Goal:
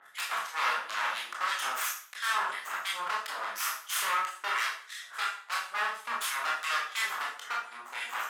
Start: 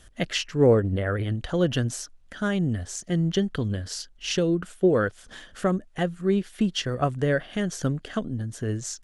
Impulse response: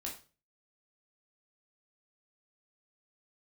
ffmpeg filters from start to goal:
-filter_complex "[0:a]adynamicequalizer=threshold=0.00398:dfrequency=6300:dqfactor=0.86:tfrequency=6300:tqfactor=0.86:attack=5:release=100:ratio=0.375:range=3.5:mode=boostabove:tftype=bell,aeval=exprs='0.376*(cos(1*acos(clip(val(0)/0.376,-1,1)))-cos(1*PI/2))+0.0106*(cos(5*acos(clip(val(0)/0.376,-1,1)))-cos(5*PI/2))+0.133*(cos(6*acos(clip(val(0)/0.376,-1,1)))-cos(6*PI/2))+0.0473*(cos(7*acos(clip(val(0)/0.376,-1,1)))-cos(7*PI/2))':channel_layout=same,acompressor=threshold=-21dB:ratio=3,acrossover=split=1500[link_01][link_02];[link_01]aeval=exprs='val(0)*(1-1/2+1/2*cos(2*PI*2.7*n/s))':channel_layout=same[link_03];[link_02]aeval=exprs='val(0)*(1-1/2-1/2*cos(2*PI*2.7*n/s))':channel_layout=same[link_04];[link_03][link_04]amix=inputs=2:normalize=0,asoftclip=type=hard:threshold=-20dB,acompressor=mode=upward:threshold=-39dB:ratio=2.5,aeval=exprs='0.0299*(abs(mod(val(0)/0.0299+3,4)-2)-1)':channel_layout=same,highpass=frequency=1100:width_type=q:width=2.6[link_05];[1:a]atrim=start_sample=2205,asetrate=28224,aresample=44100[link_06];[link_05][link_06]afir=irnorm=-1:irlink=0,asetrate=48000,aresample=44100,volume=4.5dB"

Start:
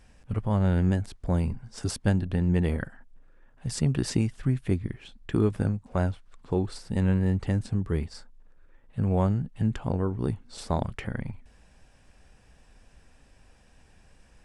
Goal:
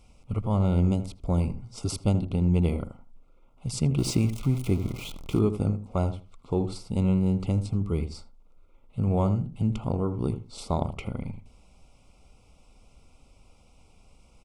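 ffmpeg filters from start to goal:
ffmpeg -i in.wav -filter_complex "[0:a]asettb=1/sr,asplit=3[link_01][link_02][link_03];[link_01]atrim=end=3.984[link_04];[link_02]atrim=start=3.98:end=5.39,asetpts=PTS-STARTPTS,afade=type=in:duration=0.004:curve=qsin,afade=type=out:start_time=1.406:duration=0.004:curve=qsin,aeval=exprs='val(0)+0.5*0.0178*sgn(val(0))':channel_layout=same[link_05];[link_03]atrim=start=5.386[link_06];[link_04][link_05]acrossfade=duration=0.004:curve1=hsin:curve2=qsin[link_07];[link_07][link_06]acrossfade=duration=0.004:curve1=qsin:curve2=hsin,asuperstop=centerf=1700:order=12:qfactor=2.7,asplit=2[link_08][link_09];[link_09]adelay=80,lowpass=frequency=1000:poles=1,volume=-9.5dB,asplit=2[link_10][link_11];[link_11]adelay=80,lowpass=frequency=1000:poles=1,volume=0.2,asplit=2[link_12][link_13];[link_13]adelay=80,lowpass=frequency=1000:poles=1,volume=0.2[link_14];[link_08][link_10][link_12][link_14]amix=inputs=4:normalize=0" out.wav

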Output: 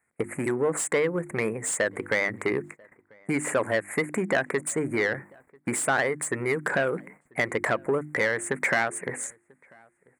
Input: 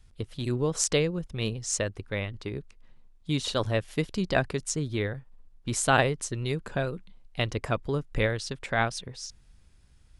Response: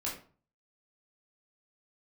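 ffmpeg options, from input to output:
-filter_complex "[0:a]asuperstop=centerf=4100:order=12:qfactor=0.75,highshelf=frequency=1700:width_type=q:width=1.5:gain=6,bandreject=frequency=50:width_type=h:width=6,bandreject=frequency=100:width_type=h:width=6,bandreject=frequency=150:width_type=h:width=6,bandreject=frequency=200:width_type=h:width=6,bandreject=frequency=250:width_type=h:width=6,bandreject=frequency=300:width_type=h:width=6,bandreject=frequency=350:width_type=h:width=6,agate=range=-22dB:threshold=-48dB:ratio=16:detection=peak,acompressor=threshold=-34dB:ratio=12,asplit=2[link_01][link_02];[link_02]highpass=frequency=720:poles=1,volume=19dB,asoftclip=type=tanh:threshold=-21.5dB[link_03];[link_01][link_03]amix=inputs=2:normalize=0,lowpass=frequency=2800:poles=1,volume=-6dB,highpass=180,asplit=2[link_04][link_05];[link_05]adelay=991.3,volume=-27dB,highshelf=frequency=4000:gain=-22.3[link_06];[link_04][link_06]amix=inputs=2:normalize=0,volume=9dB"

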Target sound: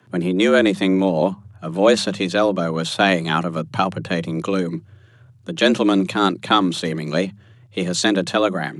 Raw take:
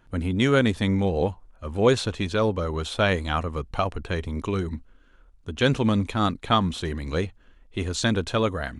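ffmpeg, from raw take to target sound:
ffmpeg -i in.wav -filter_complex "[0:a]apsyclip=11.5dB,acrossover=split=370|2300[link_01][link_02][link_03];[link_03]dynaudnorm=framelen=720:gausssize=5:maxgain=4dB[link_04];[link_01][link_02][link_04]amix=inputs=3:normalize=0,afreqshift=89,bandreject=frequency=50:width_type=h:width=6,bandreject=frequency=100:width_type=h:width=6,bandreject=frequency=150:width_type=h:width=6,bandreject=frequency=200:width_type=h:width=6,volume=-6dB" out.wav

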